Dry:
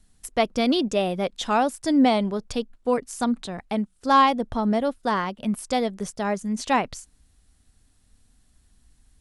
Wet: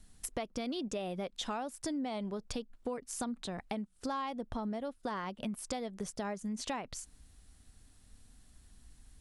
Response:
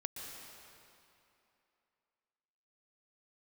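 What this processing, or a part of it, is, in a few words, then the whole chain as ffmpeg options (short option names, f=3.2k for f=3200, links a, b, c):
serial compression, leveller first: -af "acompressor=threshold=-26dB:ratio=2,acompressor=threshold=-38dB:ratio=4,volume=1dB"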